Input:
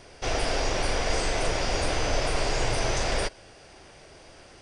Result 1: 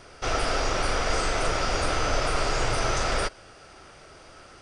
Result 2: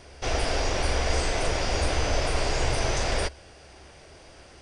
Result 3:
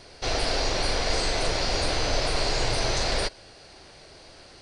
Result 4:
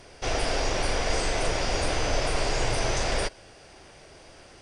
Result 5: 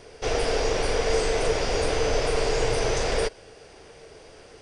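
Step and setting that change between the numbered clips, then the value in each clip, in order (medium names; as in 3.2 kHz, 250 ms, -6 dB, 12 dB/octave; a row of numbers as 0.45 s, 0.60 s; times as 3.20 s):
peaking EQ, frequency: 1.3 kHz, 69 Hz, 4.2 kHz, 15 kHz, 450 Hz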